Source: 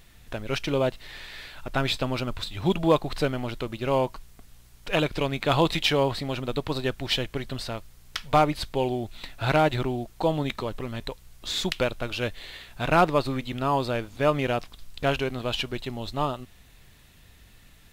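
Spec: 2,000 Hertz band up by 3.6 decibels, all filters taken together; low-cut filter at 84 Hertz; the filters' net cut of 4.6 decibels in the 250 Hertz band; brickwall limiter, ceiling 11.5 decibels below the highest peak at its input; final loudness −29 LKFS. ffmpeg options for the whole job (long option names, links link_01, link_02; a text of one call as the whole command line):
ffmpeg -i in.wav -af "highpass=84,equalizer=frequency=250:width_type=o:gain=-6.5,equalizer=frequency=2000:width_type=o:gain=5,volume=2dB,alimiter=limit=-15dB:level=0:latency=1" out.wav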